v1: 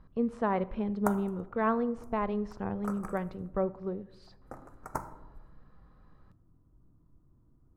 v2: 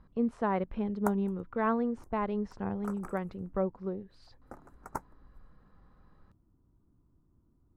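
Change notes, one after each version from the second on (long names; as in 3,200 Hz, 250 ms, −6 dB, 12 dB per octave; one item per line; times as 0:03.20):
reverb: off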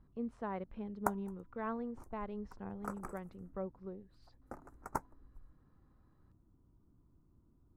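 speech −10.5 dB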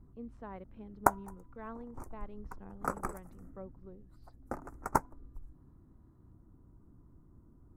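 speech −6.0 dB
background +9.0 dB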